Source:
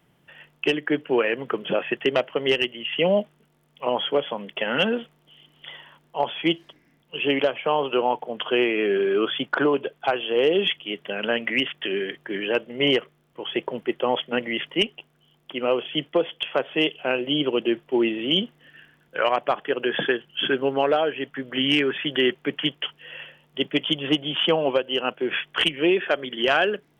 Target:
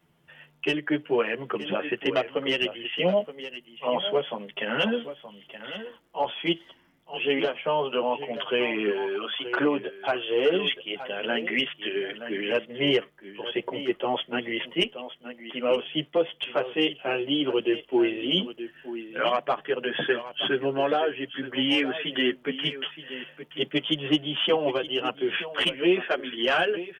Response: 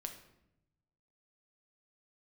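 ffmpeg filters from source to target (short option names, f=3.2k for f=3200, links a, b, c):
-filter_complex "[0:a]asettb=1/sr,asplit=3[a][b][c];[a]atrim=end=8.904[d];[b]atrim=start=8.9:end=9.46,asetpts=PTS-STARTPTS,afade=t=in:d=0.004:c=qsin,afade=t=out:st=0.556:d=0.004:c=qsin,highpass=f=840:p=1[e];[c]atrim=start=9.456[f];[d][e]acrossfade=d=0.004:c1=hsin:c2=qsin[g];[g][f]acrossfade=d=0.004:c1=qsin:c2=hsin,aecho=1:1:923:0.237,asplit=2[h][i];[i]adelay=9.4,afreqshift=-0.26[j];[h][j]amix=inputs=2:normalize=1"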